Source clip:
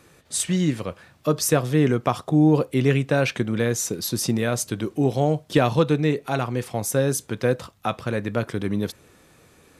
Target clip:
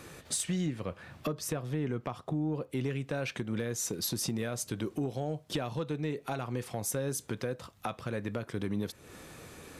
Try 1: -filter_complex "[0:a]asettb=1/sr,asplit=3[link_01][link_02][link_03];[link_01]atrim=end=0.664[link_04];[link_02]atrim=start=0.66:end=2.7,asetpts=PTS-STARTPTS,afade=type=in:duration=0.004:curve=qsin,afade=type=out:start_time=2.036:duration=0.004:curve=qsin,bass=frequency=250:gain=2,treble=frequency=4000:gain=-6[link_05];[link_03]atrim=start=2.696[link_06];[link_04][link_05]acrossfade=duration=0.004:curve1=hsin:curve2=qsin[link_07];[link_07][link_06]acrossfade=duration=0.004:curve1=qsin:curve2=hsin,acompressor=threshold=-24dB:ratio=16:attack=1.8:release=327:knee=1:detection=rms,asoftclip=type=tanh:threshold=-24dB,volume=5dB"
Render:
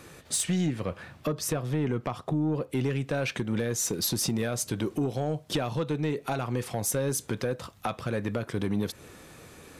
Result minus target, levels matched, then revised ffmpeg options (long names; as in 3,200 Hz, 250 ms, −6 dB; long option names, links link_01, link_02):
downward compressor: peak gain reduction −6 dB
-filter_complex "[0:a]asettb=1/sr,asplit=3[link_01][link_02][link_03];[link_01]atrim=end=0.664[link_04];[link_02]atrim=start=0.66:end=2.7,asetpts=PTS-STARTPTS,afade=type=in:duration=0.004:curve=qsin,afade=type=out:start_time=2.036:duration=0.004:curve=qsin,bass=frequency=250:gain=2,treble=frequency=4000:gain=-6[link_05];[link_03]atrim=start=2.696[link_06];[link_04][link_05]acrossfade=duration=0.004:curve1=hsin:curve2=qsin[link_07];[link_07][link_06]acrossfade=duration=0.004:curve1=qsin:curve2=hsin,acompressor=threshold=-30.5dB:ratio=16:attack=1.8:release=327:knee=1:detection=rms,asoftclip=type=tanh:threshold=-24dB,volume=5dB"